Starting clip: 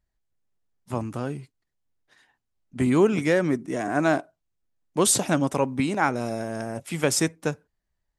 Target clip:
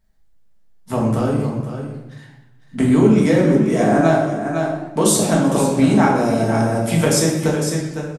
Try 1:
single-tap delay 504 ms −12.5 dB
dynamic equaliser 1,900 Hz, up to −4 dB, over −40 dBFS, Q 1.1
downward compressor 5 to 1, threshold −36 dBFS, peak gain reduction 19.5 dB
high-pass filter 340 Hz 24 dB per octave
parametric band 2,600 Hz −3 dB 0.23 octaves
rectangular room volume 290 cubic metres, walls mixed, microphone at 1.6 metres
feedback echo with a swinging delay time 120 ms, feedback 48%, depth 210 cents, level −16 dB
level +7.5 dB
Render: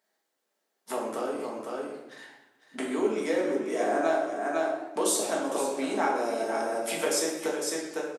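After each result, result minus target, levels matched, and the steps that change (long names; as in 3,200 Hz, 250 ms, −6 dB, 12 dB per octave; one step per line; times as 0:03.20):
downward compressor: peak gain reduction +9 dB; 250 Hz band −5.0 dB
change: downward compressor 5 to 1, threshold −24.5 dBFS, peak gain reduction 10 dB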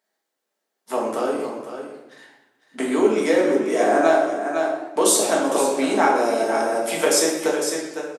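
250 Hz band −5.0 dB
remove: high-pass filter 340 Hz 24 dB per octave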